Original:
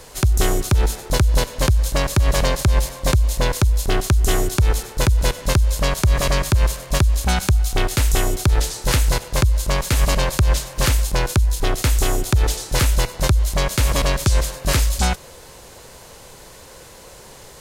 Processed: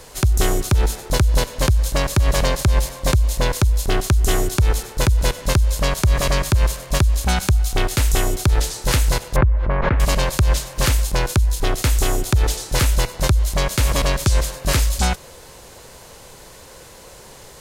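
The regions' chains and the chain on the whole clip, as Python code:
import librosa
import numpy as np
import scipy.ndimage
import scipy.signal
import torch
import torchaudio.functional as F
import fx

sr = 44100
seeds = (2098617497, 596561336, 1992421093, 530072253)

y = fx.chain(x, sr, fx.lowpass(hz=1900.0, slope=24),
    fx.pre_swell(db_per_s=23.0), at=(9.36, 10.0))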